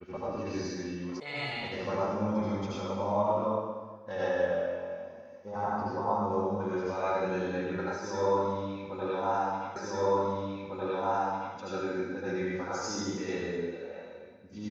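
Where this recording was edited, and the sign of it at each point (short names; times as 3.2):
1.2 sound cut off
9.76 repeat of the last 1.8 s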